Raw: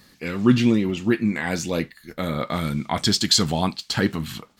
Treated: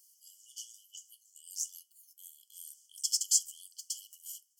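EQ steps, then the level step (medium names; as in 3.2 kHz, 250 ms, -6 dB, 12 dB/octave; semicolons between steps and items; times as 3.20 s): brick-wall FIR high-pass 2.9 kHz; Butterworth band-stop 3.8 kHz, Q 1; 0.0 dB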